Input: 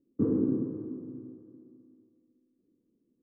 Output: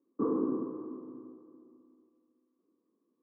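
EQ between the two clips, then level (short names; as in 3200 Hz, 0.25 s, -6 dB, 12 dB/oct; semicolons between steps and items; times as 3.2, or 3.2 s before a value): HPF 330 Hz 12 dB/oct; synth low-pass 1100 Hz, resonance Q 8.4; 0.0 dB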